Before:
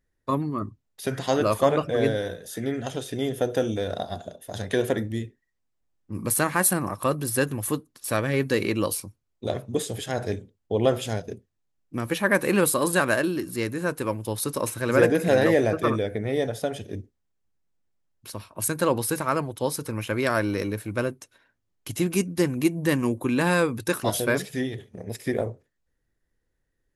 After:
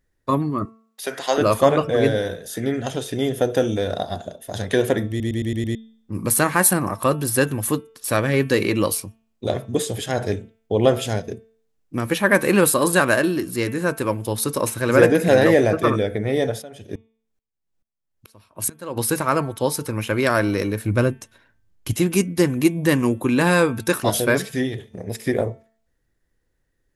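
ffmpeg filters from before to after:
ffmpeg -i in.wav -filter_complex "[0:a]asettb=1/sr,asplit=3[link_01][link_02][link_03];[link_01]atrim=end=0.654[link_04];[link_02]atrim=start=0.65:end=1.38,asetpts=PTS-STARTPTS,afade=type=in:duration=0.004:curve=qsin,afade=type=out:start_time=0.726:duration=0.004:curve=qsin,highpass=480[link_05];[link_03]atrim=start=1.376[link_06];[link_04][link_05]acrossfade=duration=0.004:curve1=hsin:curve2=qsin[link_07];[link_07][link_06]acrossfade=duration=0.004:curve1=qsin:curve2=hsin,asplit=3[link_08][link_09][link_10];[link_08]afade=type=out:start_time=16.61:duration=0.02[link_11];[link_09]aeval=exprs='val(0)*pow(10,-25*if(lt(mod(-2.3*n/s,1),2*abs(-2.3)/1000),1-mod(-2.3*n/s,1)/(2*abs(-2.3)/1000),(mod(-2.3*n/s,1)-2*abs(-2.3)/1000)/(1-2*abs(-2.3)/1000))/20)':channel_layout=same,afade=type=in:start_time=16.61:duration=0.02,afade=type=out:start_time=18.96:duration=0.02[link_12];[link_10]afade=type=in:start_time=18.96:duration=0.02[link_13];[link_11][link_12][link_13]amix=inputs=3:normalize=0,asettb=1/sr,asplit=3[link_14][link_15][link_16];[link_14]atrim=end=20.844[link_17];[link_15]atrim=start=20.84:end=21.93,asetpts=PTS-STARTPTS,afade=type=in:duration=0.004:curve=qsin,afade=type=out:start_time=1.086:duration=0.004:curve=qsin,lowshelf=frequency=160:gain=12[link_18];[link_16]atrim=start=21.926[link_19];[link_17][link_18]acrossfade=duration=0.004:curve1=hsin:curve2=qsin[link_20];[link_20][link_19]acrossfade=duration=0.004:curve1=qsin:curve2=hsin,asplit=7[link_21][link_22][link_23][link_24][link_25][link_26][link_27];[link_21]atrim=end=5.202[link_28];[link_22]atrim=start=5.088:end=5.202[link_29];[link_23]atrim=start=5.088:end=5.202[link_30];[link_24]atrim=start=5.088:end=5.202[link_31];[link_25]atrim=start=5.088:end=5.202[link_32];[link_26]atrim=start=5.088:end=5.202[link_33];[link_27]atrim=start=5.748[link_34];[link_28][link_29]acrossfade=duration=0.004:curve1=hsin:curve2=hsin[link_35];[link_35][link_30]acrossfade=duration=0.004:curve1=hsin:curve2=hsin[link_36];[link_36][link_31]acrossfade=duration=0.004:curve1=hsin:curve2=hsin[link_37];[link_37][link_32]acrossfade=duration=0.004:curve1=hsin:curve2=hsin[link_38];[link_38][link_33]acrossfade=duration=0.004:curve1=hsin:curve2=hsin[link_39];[link_39][link_34]acrossfade=duration=0.004:curve1=hsin:curve2=hsin,bandreject=frequency=223.3:width_type=h:width=4,bandreject=frequency=446.6:width_type=h:width=4,bandreject=frequency=669.9:width_type=h:width=4,bandreject=frequency=893.2:width_type=h:width=4,bandreject=frequency=1116.5:width_type=h:width=4,bandreject=frequency=1339.8:width_type=h:width=4,bandreject=frequency=1563.1:width_type=h:width=4,bandreject=frequency=1786.4:width_type=h:width=4,bandreject=frequency=2009.7:width_type=h:width=4,bandreject=frequency=2233:width_type=h:width=4,bandreject=frequency=2456.3:width_type=h:width=4,bandreject=frequency=2679.6:width_type=h:width=4,bandreject=frequency=2902.9:width_type=h:width=4,bandreject=frequency=3126.2:width_type=h:width=4,bandreject=frequency=3349.5:width_type=h:width=4,bandreject=frequency=3572.8:width_type=h:width=4,volume=5dB" out.wav

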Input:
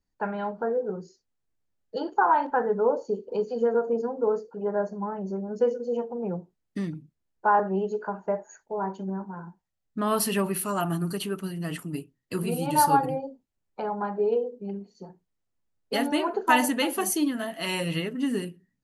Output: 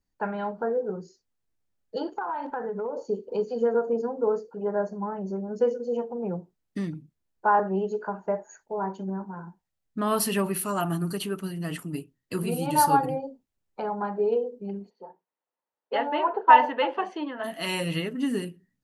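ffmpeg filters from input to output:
ffmpeg -i in.wav -filter_complex "[0:a]asplit=3[link_01][link_02][link_03];[link_01]afade=type=out:start_time=2.08:duration=0.02[link_04];[link_02]acompressor=threshold=-28dB:ratio=6:attack=3.2:release=140:knee=1:detection=peak,afade=type=in:start_time=2.08:duration=0.02,afade=type=out:start_time=2.96:duration=0.02[link_05];[link_03]afade=type=in:start_time=2.96:duration=0.02[link_06];[link_04][link_05][link_06]amix=inputs=3:normalize=0,asplit=3[link_07][link_08][link_09];[link_07]afade=type=out:start_time=14.89:duration=0.02[link_10];[link_08]highpass=460,equalizer=frequency=520:width_type=q:width=4:gain=6,equalizer=frequency=920:width_type=q:width=4:gain=9,equalizer=frequency=2300:width_type=q:width=4:gain=-4,lowpass=frequency=2900:width=0.5412,lowpass=frequency=2900:width=1.3066,afade=type=in:start_time=14.89:duration=0.02,afade=type=out:start_time=17.43:duration=0.02[link_11];[link_09]afade=type=in:start_time=17.43:duration=0.02[link_12];[link_10][link_11][link_12]amix=inputs=3:normalize=0" out.wav

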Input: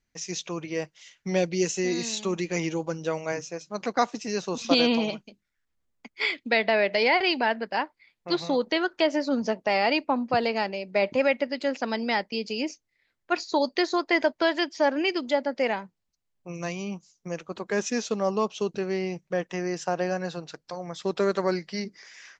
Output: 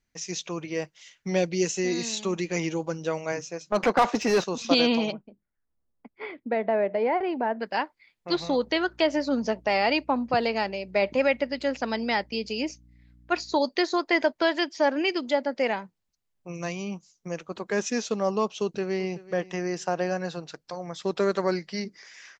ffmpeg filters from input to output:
ffmpeg -i in.wav -filter_complex "[0:a]asettb=1/sr,asplit=3[link_01][link_02][link_03];[link_01]atrim=end=3.724[link_04];[link_02]atrim=start=3.72:end=4.44,asetpts=PTS-STARTPTS,afade=type=in:duration=0.004:curve=qsin,afade=type=out:start_time=0.716:duration=0.004:curve=qsin,asplit=2[link_05][link_06];[link_06]highpass=frequency=720:poles=1,volume=26dB,asoftclip=type=tanh:threshold=-10dB[link_07];[link_05][link_07]amix=inputs=2:normalize=0,lowpass=frequency=1200:poles=1,volume=-6dB[link_08];[link_03]atrim=start=4.436[link_09];[link_04][link_08]acrossfade=duration=0.004:curve1=hsin:curve2=qsin[link_10];[link_10][link_09]acrossfade=duration=0.004:curve1=qsin:curve2=hsin,asplit=3[link_11][link_12][link_13];[link_11]afade=type=out:start_time=5.11:duration=0.02[link_14];[link_12]lowpass=1000,afade=type=in:start_time=5.11:duration=0.02,afade=type=out:start_time=7.59:duration=0.02[link_15];[link_13]afade=type=in:start_time=7.59:duration=0.02[link_16];[link_14][link_15][link_16]amix=inputs=3:normalize=0,asettb=1/sr,asplit=3[link_17][link_18][link_19];[link_17]atrim=end=8.344[link_20];[link_18]atrim=start=8.34:end=13.57,asetpts=PTS-STARTPTS,afade=type=in:duration=0.004:curve=qsin,afade=type=out:start_time=5.226:duration=0.004:curve=qsin,aeval=exprs='val(0)+0.002*(sin(2*PI*60*n/s)+sin(2*PI*2*60*n/s)/2+sin(2*PI*3*60*n/s)/3+sin(2*PI*4*60*n/s)/4+sin(2*PI*5*60*n/s)/5)':channel_layout=same[link_21];[link_19]atrim=start=13.566[link_22];[link_20][link_21]acrossfade=duration=0.004:curve1=hsin:curve2=qsin[link_23];[link_23][link_22]acrossfade=duration=0.004:curve1=qsin:curve2=hsin,asplit=2[link_24][link_25];[link_25]afade=type=in:start_time=18.61:duration=0.01,afade=type=out:start_time=19.27:duration=0.01,aecho=0:1:380|760|1140:0.125893|0.0377678|0.0113303[link_26];[link_24][link_26]amix=inputs=2:normalize=0" out.wav

